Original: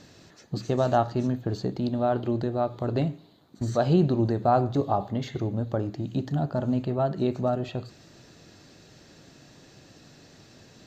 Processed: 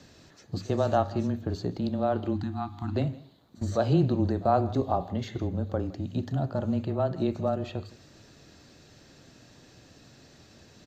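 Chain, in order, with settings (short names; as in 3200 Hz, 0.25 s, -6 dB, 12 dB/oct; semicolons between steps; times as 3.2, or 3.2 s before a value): pre-echo 45 ms -23 dB; spectral delete 2.34–2.95, 360–730 Hz; frequency shift -18 Hz; on a send: echo 0.163 s -20.5 dB; on the sum: gain -2 dB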